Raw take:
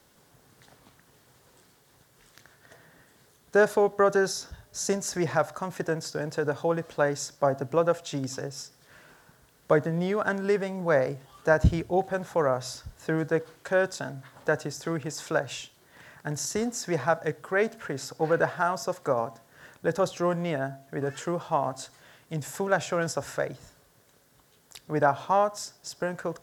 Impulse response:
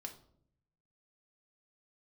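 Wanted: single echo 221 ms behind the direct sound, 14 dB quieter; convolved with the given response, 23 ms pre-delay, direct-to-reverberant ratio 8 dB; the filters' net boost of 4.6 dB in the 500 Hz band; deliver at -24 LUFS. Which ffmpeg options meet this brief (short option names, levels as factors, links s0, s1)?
-filter_complex "[0:a]equalizer=f=500:t=o:g=5.5,aecho=1:1:221:0.2,asplit=2[s0][s1];[1:a]atrim=start_sample=2205,adelay=23[s2];[s1][s2]afir=irnorm=-1:irlink=0,volume=0.631[s3];[s0][s3]amix=inputs=2:normalize=0"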